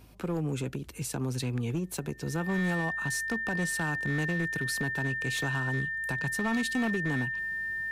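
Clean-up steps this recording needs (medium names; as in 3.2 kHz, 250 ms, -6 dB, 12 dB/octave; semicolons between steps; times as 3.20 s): clip repair -24 dBFS; de-hum 52.3 Hz, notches 3; band-stop 1.8 kHz, Q 30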